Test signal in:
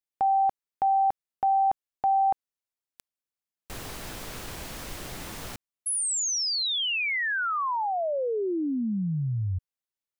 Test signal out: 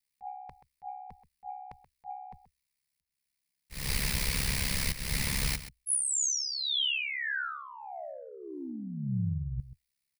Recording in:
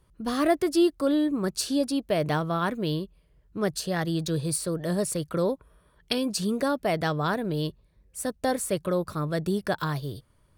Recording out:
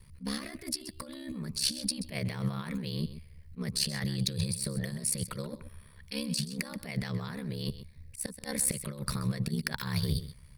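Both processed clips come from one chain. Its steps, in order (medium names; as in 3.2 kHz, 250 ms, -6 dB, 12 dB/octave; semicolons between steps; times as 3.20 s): rippled EQ curve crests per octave 0.9, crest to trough 7 dB; slow attack 231 ms; ring modulator 34 Hz; compressor with a negative ratio -37 dBFS, ratio -1; high-order bell 580 Hz -11.5 dB 2.6 oct; on a send: delay 130 ms -13.5 dB; on the sum: trim +6 dB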